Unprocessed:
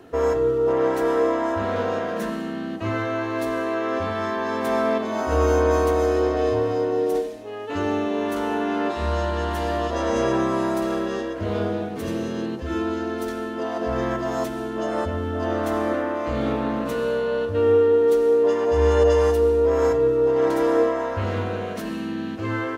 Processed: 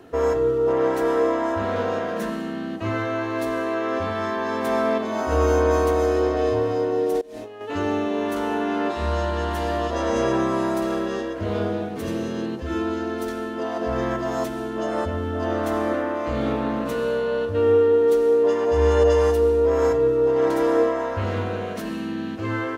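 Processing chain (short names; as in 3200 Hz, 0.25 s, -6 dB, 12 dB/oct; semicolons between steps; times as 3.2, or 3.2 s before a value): 7.21–7.61 negative-ratio compressor -39 dBFS, ratio -1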